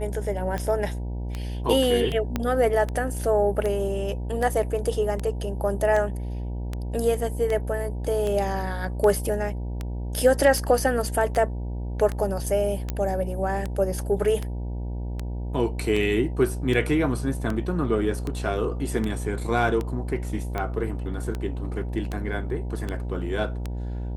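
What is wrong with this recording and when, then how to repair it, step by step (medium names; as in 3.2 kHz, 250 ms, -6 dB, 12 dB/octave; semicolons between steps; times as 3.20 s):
buzz 60 Hz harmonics 16 -30 dBFS
tick 78 rpm -16 dBFS
2.36 s: pop -11 dBFS
12.90 s: pop -14 dBFS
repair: de-click; de-hum 60 Hz, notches 16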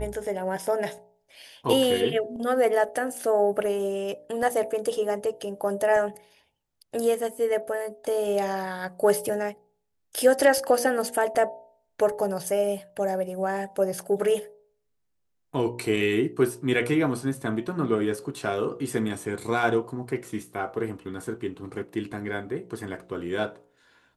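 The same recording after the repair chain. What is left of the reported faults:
2.36 s: pop
12.90 s: pop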